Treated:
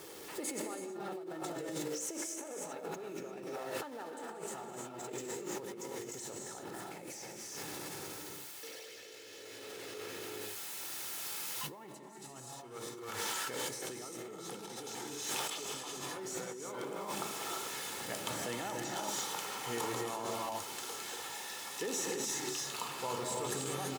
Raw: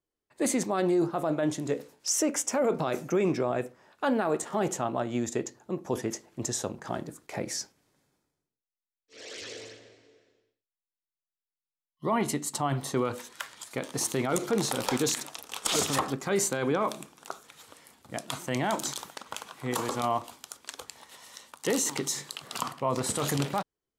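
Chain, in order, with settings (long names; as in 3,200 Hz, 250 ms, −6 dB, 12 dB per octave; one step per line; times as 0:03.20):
converter with a step at zero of −33.5 dBFS
source passing by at 0:08.99, 18 m/s, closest 14 metres
reverb whose tail is shaped and stops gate 370 ms rising, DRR −1.5 dB
compressor whose output falls as the input rises −49 dBFS, ratio −1
high-pass filter 160 Hz 12 dB per octave
comb filter 2.3 ms, depth 39%
level +6.5 dB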